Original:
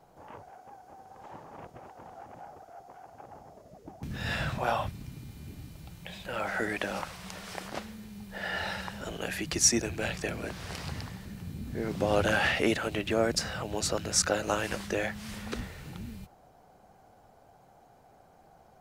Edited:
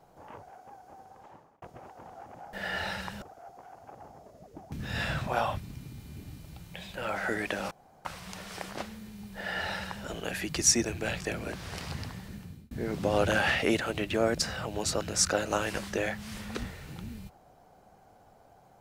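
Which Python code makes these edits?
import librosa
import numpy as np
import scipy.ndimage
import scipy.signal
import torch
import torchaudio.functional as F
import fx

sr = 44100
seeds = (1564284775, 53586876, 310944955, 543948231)

y = fx.edit(x, sr, fx.fade_out_span(start_s=1.01, length_s=0.61),
    fx.insert_room_tone(at_s=7.02, length_s=0.34),
    fx.duplicate(start_s=8.33, length_s=0.69, to_s=2.53),
    fx.fade_out_span(start_s=11.31, length_s=0.37), tone=tone)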